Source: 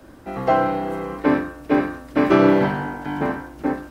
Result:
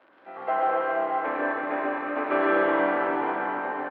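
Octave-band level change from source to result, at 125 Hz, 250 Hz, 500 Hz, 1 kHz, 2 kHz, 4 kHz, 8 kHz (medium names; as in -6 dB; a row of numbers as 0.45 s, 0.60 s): under -20 dB, -11.5 dB, -4.5 dB, -1.5 dB, 0.0 dB, -8.5 dB, no reading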